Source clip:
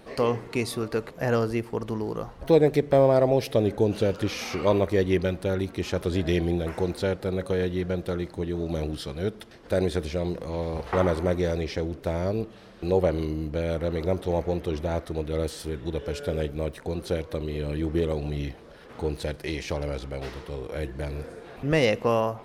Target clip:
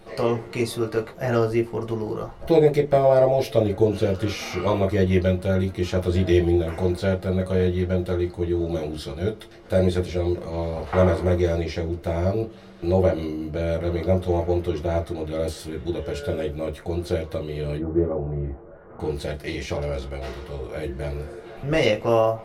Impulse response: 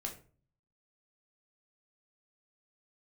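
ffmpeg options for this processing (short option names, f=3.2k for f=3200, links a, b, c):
-filter_complex "[0:a]asettb=1/sr,asplit=3[a][b][c];[a]atrim=end=17.774[d];[b]atrim=start=17.77:end=19,asetpts=PTS-STARTPTS,afade=t=in:d=0.004:c=qsin,afade=t=out:st=1.226:d=0.004:c=qsin,lowpass=f=1.4k:w=0.5412,lowpass=f=1.4k:w=1.3066[e];[c]atrim=start=18.996[f];[d][e]acrossfade=d=0.004:c1=hsin:c2=qsin[g];[g][f]acrossfade=d=0.004:c1=qsin:c2=hsin[h];[1:a]atrim=start_sample=2205,atrim=end_sample=4410,asetrate=79380,aresample=44100[i];[h][i]afir=irnorm=-1:irlink=0,volume=7.5dB"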